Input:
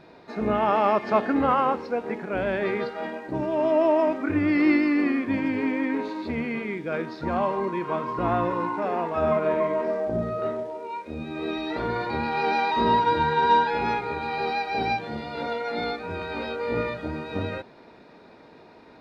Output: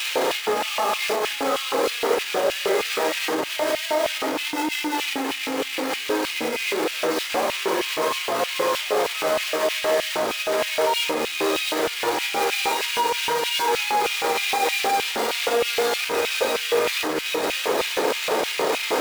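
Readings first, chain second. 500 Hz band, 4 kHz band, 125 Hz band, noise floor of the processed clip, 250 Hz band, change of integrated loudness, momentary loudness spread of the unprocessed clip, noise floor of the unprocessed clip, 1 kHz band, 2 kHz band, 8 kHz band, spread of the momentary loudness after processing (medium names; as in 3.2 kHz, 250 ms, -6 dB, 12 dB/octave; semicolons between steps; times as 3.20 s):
+3.0 dB, +15.5 dB, -13.5 dB, -30 dBFS, -5.5 dB, +2.5 dB, 11 LU, -50 dBFS, 0.0 dB, +6.5 dB, no reading, 3 LU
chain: one-bit comparator; simulated room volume 670 m³, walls furnished, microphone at 4 m; peak limiter -15 dBFS, peak gain reduction 9.5 dB; bass shelf 73 Hz +9.5 dB; LFO high-pass square 3.2 Hz 480–2600 Hz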